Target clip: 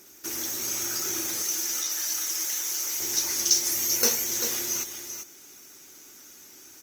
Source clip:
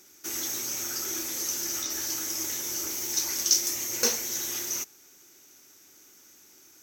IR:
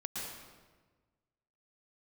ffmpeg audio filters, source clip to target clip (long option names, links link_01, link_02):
-filter_complex "[0:a]asettb=1/sr,asplit=3[link_01][link_02][link_03];[link_01]atrim=end=1.424[link_04];[link_02]atrim=start=1.42:end=3,asetpts=PTS-STARTPTS,afade=type=in:duration=0.004:curve=qsin,afade=type=out:start_time=1.576:duration=0.004:curve=qsin,highpass=frequency=1100:poles=1[link_05];[link_03]atrim=start=2.996[link_06];[link_04][link_05]acrossfade=duration=0.004:curve1=hsin:curve2=qsin[link_07];[link_07][link_06]acrossfade=duration=0.004:curve1=qsin:curve2=hsin,asettb=1/sr,asplit=3[link_08][link_09][link_10];[link_08]atrim=end=3.704[link_11];[link_09]atrim=start=3.7:end=4.24,asetpts=PTS-STARTPTS,afade=type=in:duration=0.004:curve=qsin,afade=type=out:start_time=0.536:duration=0.004:curve=qsin,equalizer=frequency=13000:width_type=o:width=0.65:gain=6.5[link_12];[link_10]atrim=start=4.236[link_13];[link_11][link_12]acrossfade=duration=0.004:curve1=hsin:curve2=qsin[link_14];[link_14][link_13]acrossfade=duration=0.004:curve1=qsin:curve2=hsin,asplit=2[link_15][link_16];[link_16]acompressor=threshold=-40dB:ratio=6,volume=-1dB[link_17];[link_15][link_17]amix=inputs=2:normalize=0,aecho=1:1:392:0.398" -ar 48000 -c:a libopus -b:a 24k